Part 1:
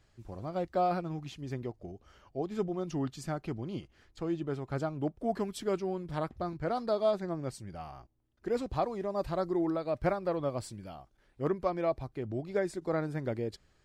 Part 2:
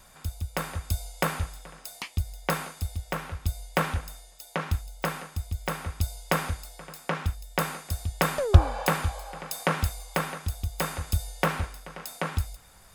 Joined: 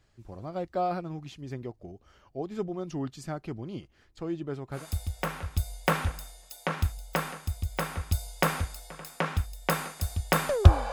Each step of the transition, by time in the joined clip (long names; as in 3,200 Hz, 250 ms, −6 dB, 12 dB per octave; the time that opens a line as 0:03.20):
part 1
0:04.79: continue with part 2 from 0:02.68, crossfade 0.16 s